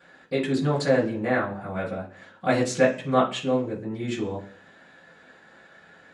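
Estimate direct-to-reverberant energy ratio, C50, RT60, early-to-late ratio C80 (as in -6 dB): -12.0 dB, 10.5 dB, 0.45 s, 16.0 dB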